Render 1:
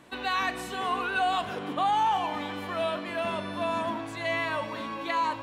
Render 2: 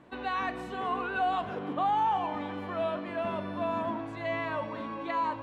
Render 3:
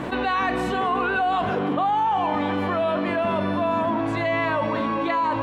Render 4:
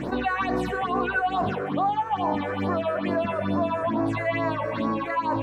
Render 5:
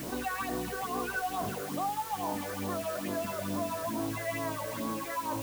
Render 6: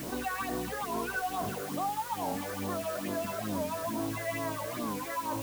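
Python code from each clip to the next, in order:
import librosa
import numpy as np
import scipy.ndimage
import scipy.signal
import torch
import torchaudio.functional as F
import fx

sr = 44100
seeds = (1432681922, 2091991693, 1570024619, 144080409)

y1 = fx.lowpass(x, sr, hz=1100.0, slope=6)
y2 = fx.env_flatten(y1, sr, amount_pct=70)
y2 = y2 * librosa.db_to_amplitude(4.5)
y3 = fx.phaser_stages(y2, sr, stages=6, low_hz=220.0, high_hz=3200.0, hz=2.3, feedback_pct=25)
y4 = fx.quant_dither(y3, sr, seeds[0], bits=6, dither='triangular')
y4 = y4 * librosa.db_to_amplitude(-9.0)
y5 = fx.record_warp(y4, sr, rpm=45.0, depth_cents=160.0)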